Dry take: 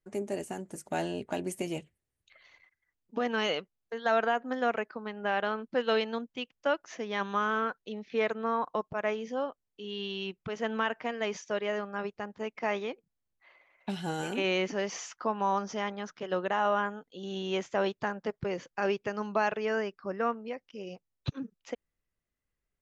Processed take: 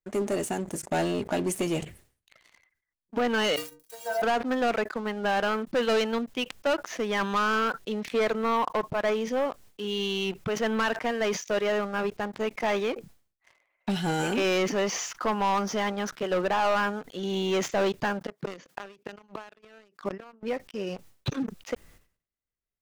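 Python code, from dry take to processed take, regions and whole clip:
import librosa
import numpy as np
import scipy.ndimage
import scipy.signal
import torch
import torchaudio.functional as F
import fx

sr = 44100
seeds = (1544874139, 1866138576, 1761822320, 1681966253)

y = fx.chain(x, sr, fx.crossing_spikes(level_db=-25.0),
    fx.stiff_resonator(f0_hz=140.0, decay_s=0.68, stiffness=0.03), at=(3.56, 4.22))
y = fx.chain(y, sr, fx.highpass(hz=160.0, slope=24),
    fx.gate_flip(shuts_db=-25.0, range_db=-26), at=(18.2, 20.43))
y = fx.leveller(y, sr, passes=3)
y = fx.sustainer(y, sr, db_per_s=130.0)
y = y * librosa.db_to_amplitude(-3.0)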